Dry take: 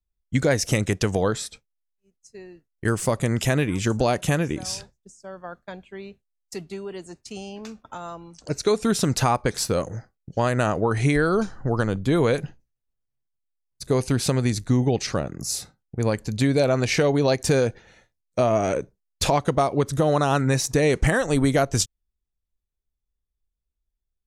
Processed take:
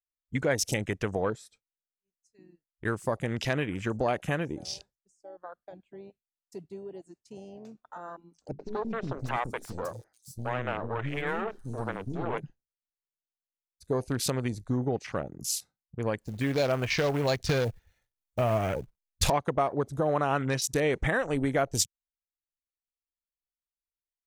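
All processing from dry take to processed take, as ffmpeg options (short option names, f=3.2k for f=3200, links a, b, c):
-filter_complex "[0:a]asettb=1/sr,asplit=3[a][b][c];[a]atrim=end=8.514[d];[b]atrim=start=8.51:end=12.38,asetpts=PTS-STARTPTS,afade=t=in:d=0.004:c=qsin,afade=t=out:st=3.866:d=0.004:c=qsin,bandreject=f=50:t=h:w=6,bandreject=f=100:t=h:w=6,bandreject=f=150:t=h:w=6,bandreject=f=200:t=h:w=6,bandreject=f=250:t=h:w=6,bandreject=f=300:t=h:w=6,bandreject=f=350:t=h:w=6,bandreject=f=400:t=h:w=6,aeval=exprs='clip(val(0),-1,0.0282)':c=same,acrossover=split=330|4800[e][f][g];[f]adelay=80[h];[g]adelay=680[i];[e][h][i]amix=inputs=3:normalize=0,atrim=end_sample=170667[j];[c]atrim=start=12.376[k];[d][j]acrossfade=d=0.004:c1=hsin:c2=qsin[l];[l][k]acrossfade=d=0.004:c1=qsin:c2=hsin,asettb=1/sr,asplit=3[m][n][o];[m]atrim=end=16.214[p];[n]atrim=start=16.21:end=19.3,asetpts=PTS-STARTPTS,afade=t=in:d=0.004:c=qsin,afade=t=out:st=3.086:d=0.004:c=qsin,asubboost=boost=7:cutoff=140,acrusher=bits=3:mode=log:mix=0:aa=0.000001[q];[o]atrim=start=19.296[r];[p][q]acrossfade=d=0.004:c1=hsin:c2=qsin[s];[s][r]acrossfade=d=0.004:c1=qsin:c2=hsin,lowshelf=f=350:g=-6.5,afwtdn=0.02,highshelf=f=10k:g=6,volume=-4dB"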